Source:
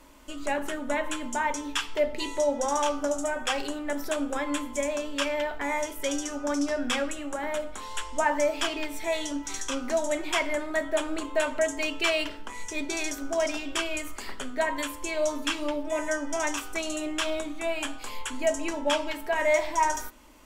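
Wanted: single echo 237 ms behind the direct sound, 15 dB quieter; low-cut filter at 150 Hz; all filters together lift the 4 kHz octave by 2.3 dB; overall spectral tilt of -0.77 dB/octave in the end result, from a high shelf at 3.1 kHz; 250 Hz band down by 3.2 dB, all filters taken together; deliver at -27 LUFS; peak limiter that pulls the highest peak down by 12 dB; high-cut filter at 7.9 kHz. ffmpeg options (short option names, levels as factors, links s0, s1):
-af "highpass=150,lowpass=7900,equalizer=f=250:t=o:g=-3.5,highshelf=f=3100:g=-3.5,equalizer=f=4000:t=o:g=6,alimiter=limit=0.0708:level=0:latency=1,aecho=1:1:237:0.178,volume=2"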